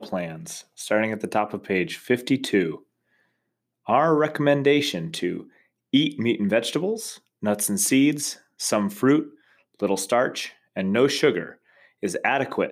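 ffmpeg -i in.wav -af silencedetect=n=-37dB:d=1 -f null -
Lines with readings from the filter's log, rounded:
silence_start: 2.76
silence_end: 3.87 | silence_duration: 1.11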